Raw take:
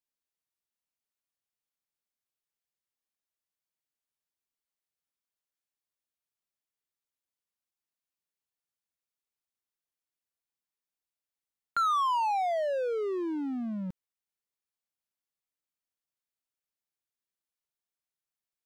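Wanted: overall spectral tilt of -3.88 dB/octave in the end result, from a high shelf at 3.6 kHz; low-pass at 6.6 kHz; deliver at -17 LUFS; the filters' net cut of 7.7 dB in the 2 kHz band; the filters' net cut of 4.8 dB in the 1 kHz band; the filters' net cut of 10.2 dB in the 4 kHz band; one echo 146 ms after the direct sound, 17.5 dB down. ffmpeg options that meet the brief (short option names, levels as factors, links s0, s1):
-af "lowpass=6600,equalizer=f=1000:t=o:g=-3.5,equalizer=f=2000:t=o:g=-6.5,highshelf=f=3600:g=-5.5,equalizer=f=4000:t=o:g=-6.5,aecho=1:1:146:0.133,volume=6.31"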